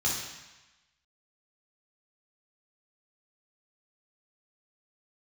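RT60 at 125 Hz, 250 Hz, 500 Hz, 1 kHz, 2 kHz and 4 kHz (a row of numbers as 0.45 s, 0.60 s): 1.1 s, 0.95 s, 0.95 s, 1.2 s, 1.2 s, 1.1 s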